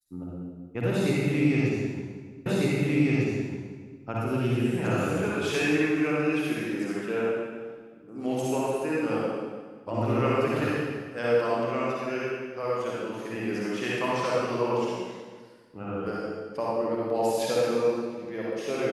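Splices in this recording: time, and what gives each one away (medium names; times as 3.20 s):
2.46 s: repeat of the last 1.55 s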